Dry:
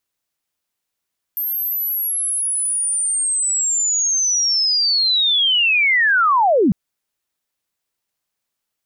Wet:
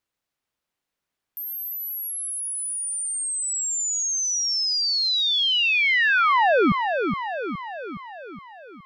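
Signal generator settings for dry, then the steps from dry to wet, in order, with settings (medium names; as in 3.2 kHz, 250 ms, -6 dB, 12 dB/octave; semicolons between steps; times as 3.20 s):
sweep linear 13 kHz -> 160 Hz -19.5 dBFS -> -11 dBFS 5.35 s
peak limiter -15.5 dBFS; treble shelf 5.1 kHz -10.5 dB; on a send: feedback echo behind a low-pass 417 ms, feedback 57%, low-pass 2.4 kHz, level -6 dB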